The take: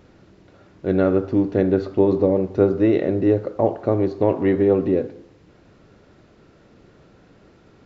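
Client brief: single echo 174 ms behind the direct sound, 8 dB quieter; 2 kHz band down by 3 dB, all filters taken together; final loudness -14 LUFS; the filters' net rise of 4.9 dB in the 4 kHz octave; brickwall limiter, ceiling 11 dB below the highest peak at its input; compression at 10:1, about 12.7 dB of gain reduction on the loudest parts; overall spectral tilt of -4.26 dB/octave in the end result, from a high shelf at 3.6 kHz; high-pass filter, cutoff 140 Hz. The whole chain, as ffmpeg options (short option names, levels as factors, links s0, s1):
-af "highpass=140,equalizer=f=2000:t=o:g=-6,highshelf=f=3600:g=4.5,equalizer=f=4000:t=o:g=5,acompressor=threshold=0.0631:ratio=10,alimiter=level_in=1.06:limit=0.0631:level=0:latency=1,volume=0.944,aecho=1:1:174:0.398,volume=9.44"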